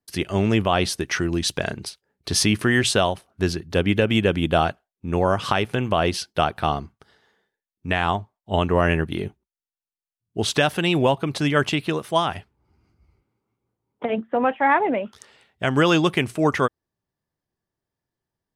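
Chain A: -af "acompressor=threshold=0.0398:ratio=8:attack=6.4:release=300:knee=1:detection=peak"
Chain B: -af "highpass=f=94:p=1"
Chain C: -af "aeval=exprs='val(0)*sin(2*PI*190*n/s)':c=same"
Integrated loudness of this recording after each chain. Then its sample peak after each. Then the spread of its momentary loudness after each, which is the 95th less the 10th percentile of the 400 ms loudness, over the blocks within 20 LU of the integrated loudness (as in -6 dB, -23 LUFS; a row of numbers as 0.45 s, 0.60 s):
-34.0 LUFS, -22.5 LUFS, -25.5 LUFS; -16.0 dBFS, -5.0 dBFS, -7.0 dBFS; 7 LU, 10 LU, 10 LU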